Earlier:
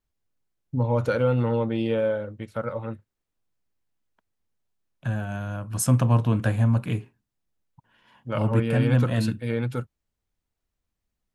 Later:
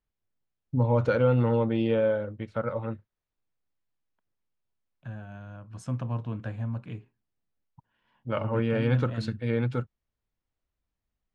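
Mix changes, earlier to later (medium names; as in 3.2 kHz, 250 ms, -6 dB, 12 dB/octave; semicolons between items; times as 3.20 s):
second voice -11.5 dB; master: add distance through air 120 m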